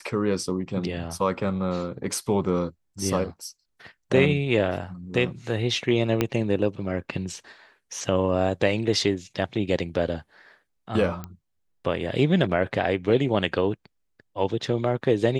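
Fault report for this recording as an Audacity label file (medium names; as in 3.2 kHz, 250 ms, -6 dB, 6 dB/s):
6.210000	6.210000	pop -8 dBFS
11.240000	11.240000	pop -20 dBFS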